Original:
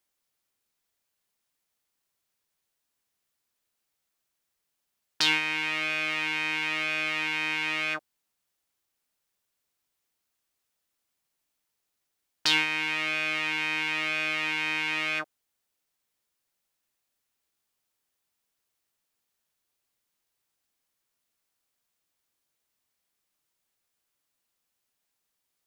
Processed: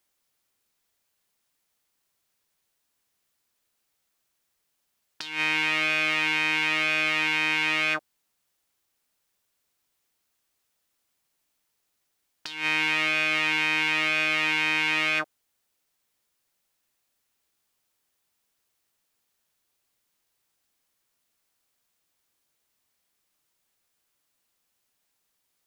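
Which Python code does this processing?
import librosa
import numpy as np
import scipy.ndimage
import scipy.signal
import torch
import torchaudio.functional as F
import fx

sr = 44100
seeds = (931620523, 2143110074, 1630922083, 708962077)

y = fx.over_compress(x, sr, threshold_db=-29.0, ratio=-0.5)
y = y * 10.0 ** (4.0 / 20.0)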